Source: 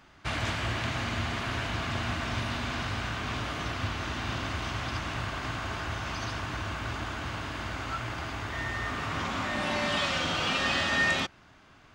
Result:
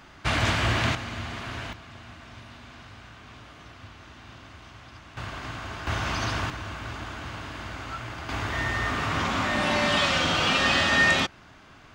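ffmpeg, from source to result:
-af "asetnsamples=n=441:p=0,asendcmd='0.95 volume volume -3dB;1.73 volume volume -13.5dB;5.17 volume volume -2dB;5.87 volume volume 6dB;6.5 volume volume -1.5dB;8.29 volume volume 5.5dB',volume=7dB"

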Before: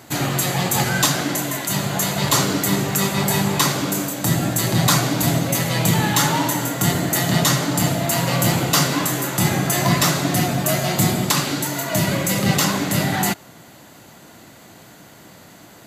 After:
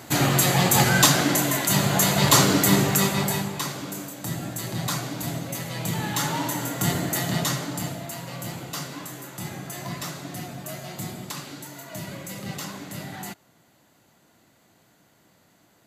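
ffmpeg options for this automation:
-af "volume=7.5dB,afade=t=out:st=2.79:d=0.73:silence=0.237137,afade=t=in:st=5.77:d=1.15:silence=0.473151,afade=t=out:st=6.92:d=1.27:silence=0.281838"

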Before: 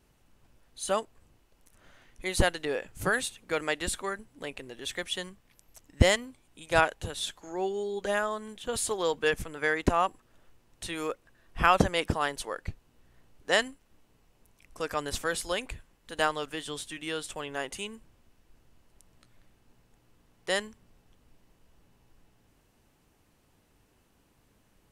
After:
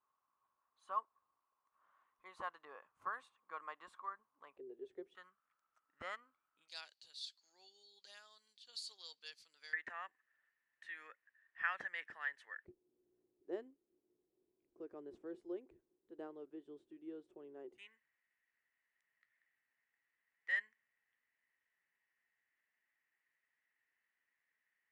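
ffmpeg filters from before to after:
-af "asetnsamples=n=441:p=0,asendcmd='4.57 bandpass f 390;5.15 bandpass f 1300;6.68 bandpass f 4500;9.73 bandpass f 1800;12.65 bandpass f 360;17.78 bandpass f 1900',bandpass=f=1.1k:t=q:w=12:csg=0"

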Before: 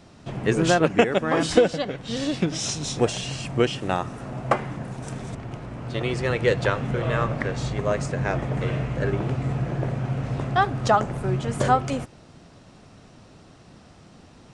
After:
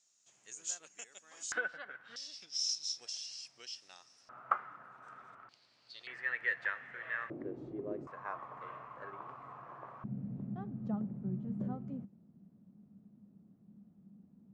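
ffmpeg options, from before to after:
-af "asetnsamples=n=441:p=0,asendcmd='1.52 bandpass f 1500;2.16 bandpass f 5300;4.29 bandpass f 1300;5.49 bandpass f 4500;6.07 bandpass f 1800;7.3 bandpass f 340;8.07 bandpass f 1100;10.04 bandpass f 200',bandpass=f=6.8k:t=q:w=8.7:csg=0"

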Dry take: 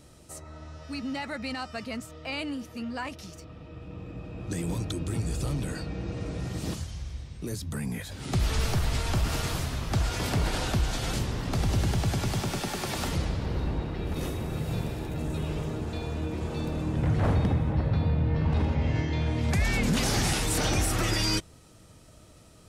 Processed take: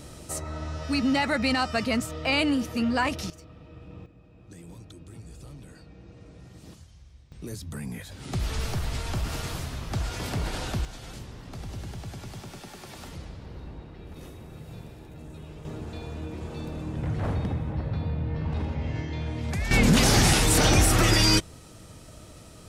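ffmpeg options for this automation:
-af "asetnsamples=n=441:p=0,asendcmd='3.3 volume volume -3dB;4.06 volume volume -14.5dB;7.32 volume volume -3dB;10.85 volume volume -11.5dB;15.65 volume volume -4dB;19.71 volume volume 6.5dB',volume=9.5dB"

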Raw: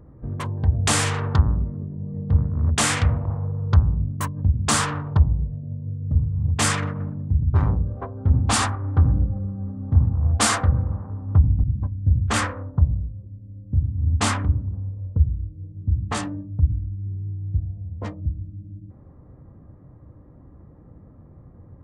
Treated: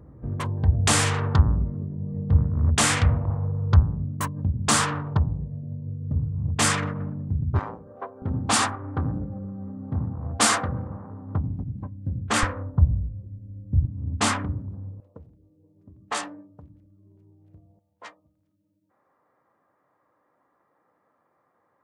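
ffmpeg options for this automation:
-af "asetnsamples=n=441:p=0,asendcmd='3.83 highpass f 110;7.59 highpass f 440;8.22 highpass f 170;12.43 highpass f 43;13.85 highpass f 140;15 highpass f 490;17.79 highpass f 1100',highpass=44"

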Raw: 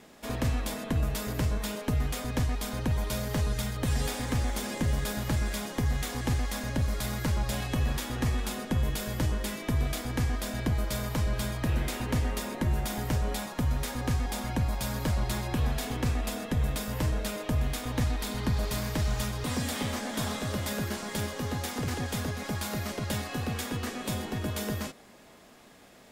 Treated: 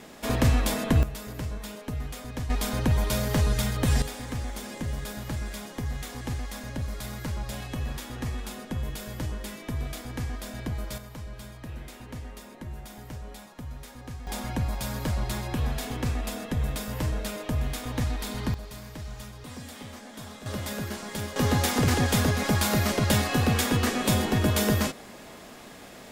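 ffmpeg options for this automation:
-af "asetnsamples=n=441:p=0,asendcmd='1.03 volume volume -5dB;2.5 volume volume 5dB;4.02 volume volume -4dB;10.98 volume volume -11dB;14.27 volume volume 0dB;18.54 volume volume -10dB;20.46 volume volume -1dB;21.36 volume volume 9dB',volume=7dB"

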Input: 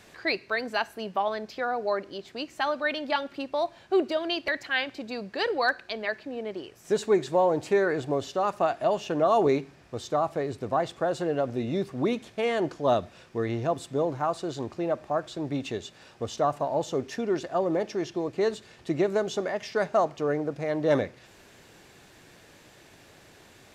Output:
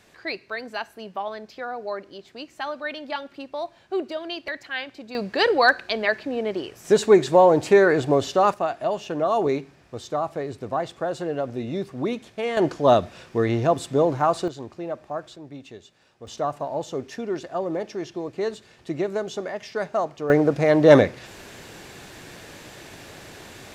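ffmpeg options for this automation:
-af "asetnsamples=n=441:p=0,asendcmd='5.15 volume volume 8dB;8.54 volume volume 0dB;12.57 volume volume 7dB;14.48 volume volume -3dB;15.36 volume volume -9.5dB;16.27 volume volume -1dB;20.3 volume volume 11dB',volume=-3dB"

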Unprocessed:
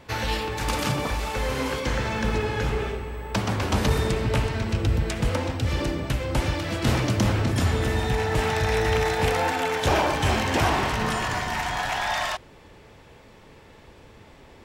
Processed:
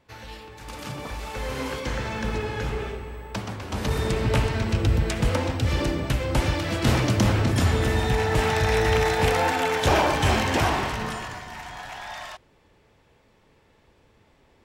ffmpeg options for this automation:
-af "volume=8.5dB,afade=t=in:st=0.63:d=0.98:silence=0.281838,afade=t=out:st=3.12:d=0.52:silence=0.446684,afade=t=in:st=3.64:d=0.64:silence=0.266073,afade=t=out:st=10.36:d=1.04:silence=0.251189"

